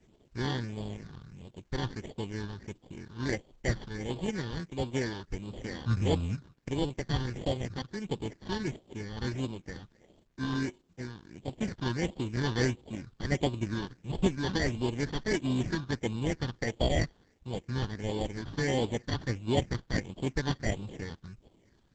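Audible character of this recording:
aliases and images of a low sample rate 1,300 Hz, jitter 0%
phaser sweep stages 6, 1.5 Hz, lowest notch 590–1,700 Hz
a quantiser's noise floor 12 bits, dither none
Opus

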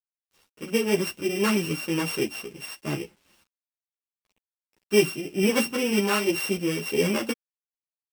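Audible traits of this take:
a buzz of ramps at a fixed pitch in blocks of 16 samples
sample-and-hold tremolo
a quantiser's noise floor 10 bits, dither none
a shimmering, thickened sound

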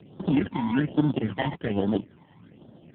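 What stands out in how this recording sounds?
aliases and images of a low sample rate 1,200 Hz, jitter 0%
phaser sweep stages 12, 1.2 Hz, lowest notch 420–2,300 Hz
AMR narrowband

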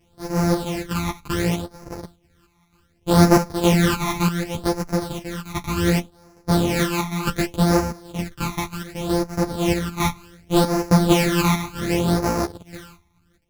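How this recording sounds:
a buzz of ramps at a fixed pitch in blocks of 256 samples
phaser sweep stages 12, 0.67 Hz, lowest notch 500–3,300 Hz
chopped level 1.1 Hz, depth 60%, duty 70%
a shimmering, thickened sound

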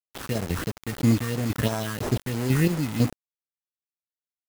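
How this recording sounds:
chopped level 2 Hz, depth 60%, duty 35%
aliases and images of a low sample rate 2,300 Hz, jitter 0%
phaser sweep stages 4, 3 Hz, lowest notch 620–3,600 Hz
a quantiser's noise floor 6 bits, dither none

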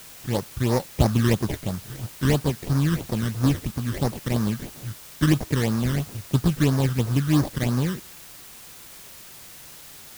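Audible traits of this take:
aliases and images of a low sample rate 1,400 Hz, jitter 20%
phaser sweep stages 12, 3 Hz, lowest notch 730–3,100 Hz
a quantiser's noise floor 8 bits, dither triangular

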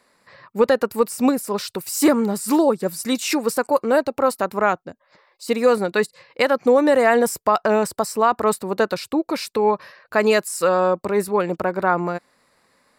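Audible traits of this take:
background noise floor −64 dBFS
spectral slope −4.0 dB per octave

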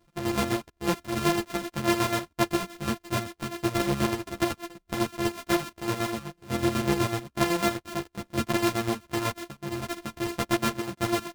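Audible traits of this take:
a buzz of ramps at a fixed pitch in blocks of 128 samples
chopped level 8 Hz, depth 60%, duty 45%
a shimmering, thickened sound

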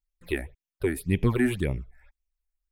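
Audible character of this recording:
phaser sweep stages 8, 1.9 Hz, lowest notch 130–1,400 Hz

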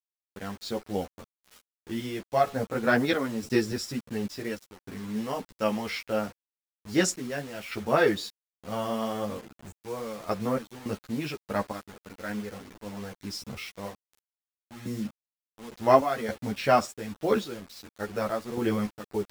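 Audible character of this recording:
sample-and-hold tremolo, depth 85%
a quantiser's noise floor 8 bits, dither none
a shimmering, thickened sound

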